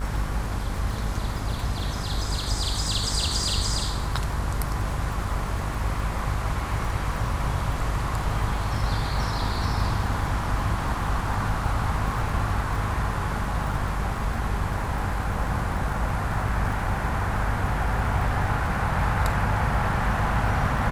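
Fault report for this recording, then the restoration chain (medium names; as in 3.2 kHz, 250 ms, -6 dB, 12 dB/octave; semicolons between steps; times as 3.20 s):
buzz 50 Hz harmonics 33 -30 dBFS
crackle 47 per s -33 dBFS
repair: de-click; de-hum 50 Hz, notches 33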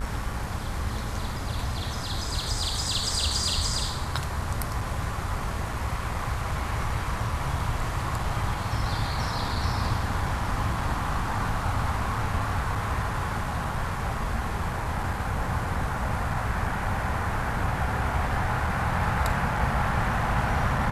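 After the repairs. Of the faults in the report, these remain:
nothing left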